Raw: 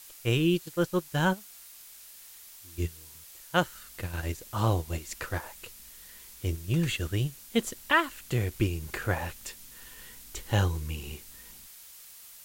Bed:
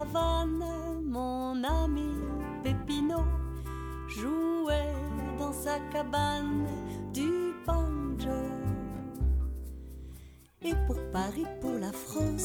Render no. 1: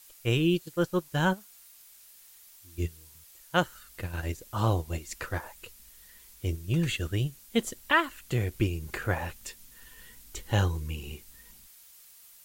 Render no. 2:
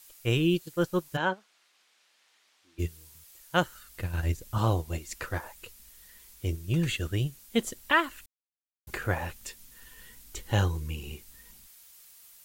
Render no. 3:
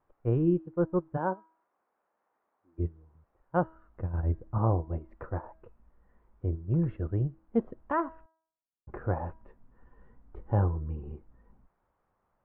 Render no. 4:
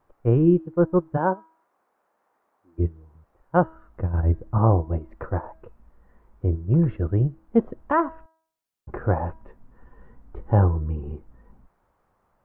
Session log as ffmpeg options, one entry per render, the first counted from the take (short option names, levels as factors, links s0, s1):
-af "afftdn=nr=6:nf=-50"
-filter_complex "[0:a]asplit=3[s0][s1][s2];[s0]afade=t=out:st=1.16:d=0.02[s3];[s1]highpass=330,lowpass=3500,afade=t=in:st=1.16:d=0.02,afade=t=out:st=2.78:d=0.02[s4];[s2]afade=t=in:st=2.78:d=0.02[s5];[s3][s4][s5]amix=inputs=3:normalize=0,asettb=1/sr,asplit=3[s6][s7][s8];[s6]atrim=end=3.864[s9];[s7]atrim=start=3.86:end=4.58,asetpts=PTS-STARTPTS,afade=t=in:d=0.004:c=qsin,afade=t=out:st=0.716:d=0.004:c=qsin,asubboost=boost=8:cutoff=250[s10];[s8]atrim=start=4.576[s11];[s9][s10]acrossfade=d=0.004:c1=hsin:c2=qsin[s12];[s12][s11]acrossfade=d=0.004:c1=qsin:c2=hsin,asplit=3[s13][s14][s15];[s13]atrim=end=8.26,asetpts=PTS-STARTPTS,afade=t=out:st=8.256:d=0.004:c=hsin[s16];[s14]atrim=start=8.26:end=8.87,asetpts=PTS-STARTPTS,volume=0[s17];[s15]atrim=start=8.87,asetpts=PTS-STARTPTS,afade=t=in:d=0.004:c=hsin[s18];[s16][s17][s18]concat=n=3:v=0:a=1"
-af "lowpass=f=1100:w=0.5412,lowpass=f=1100:w=1.3066,bandreject=f=322.2:t=h:w=4,bandreject=f=644.4:t=h:w=4,bandreject=f=966.6:t=h:w=4,bandreject=f=1288.8:t=h:w=4,bandreject=f=1611:t=h:w=4,bandreject=f=1933.2:t=h:w=4,bandreject=f=2255.4:t=h:w=4,bandreject=f=2577.6:t=h:w=4,bandreject=f=2899.8:t=h:w=4,bandreject=f=3222:t=h:w=4,bandreject=f=3544.2:t=h:w=4,bandreject=f=3866.4:t=h:w=4,bandreject=f=4188.6:t=h:w=4,bandreject=f=4510.8:t=h:w=4,bandreject=f=4833:t=h:w=4,bandreject=f=5155.2:t=h:w=4,bandreject=f=5477.4:t=h:w=4,bandreject=f=5799.6:t=h:w=4,bandreject=f=6121.8:t=h:w=4,bandreject=f=6444:t=h:w=4,bandreject=f=6766.2:t=h:w=4,bandreject=f=7088.4:t=h:w=4,bandreject=f=7410.6:t=h:w=4,bandreject=f=7732.8:t=h:w=4,bandreject=f=8055:t=h:w=4,bandreject=f=8377.2:t=h:w=4,bandreject=f=8699.4:t=h:w=4,bandreject=f=9021.6:t=h:w=4,bandreject=f=9343.8:t=h:w=4"
-af "volume=2.51"